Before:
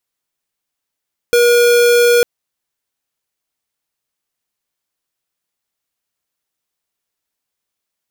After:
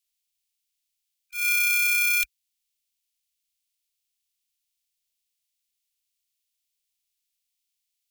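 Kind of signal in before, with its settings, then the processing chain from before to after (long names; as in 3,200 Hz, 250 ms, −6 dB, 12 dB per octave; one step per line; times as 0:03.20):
tone square 479 Hz −10 dBFS 0.90 s
spectral magnitudes quantised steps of 30 dB
inverse Chebyshev band-stop filter 150–870 Hz, stop band 60 dB
volume swells 169 ms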